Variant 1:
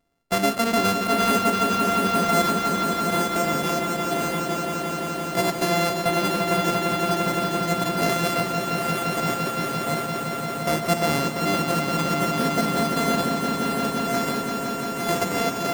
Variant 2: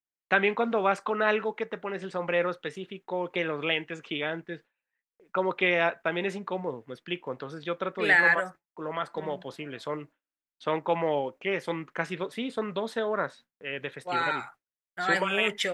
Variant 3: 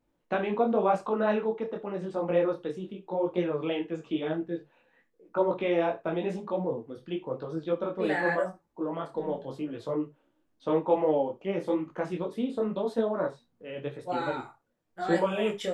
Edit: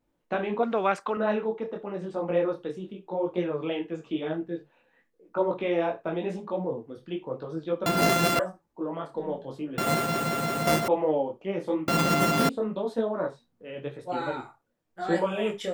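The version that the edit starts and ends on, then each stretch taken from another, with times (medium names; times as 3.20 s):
3
0.63–1.17 s: from 2
7.86–8.39 s: from 1
9.78–10.88 s: from 1
11.88–12.49 s: from 1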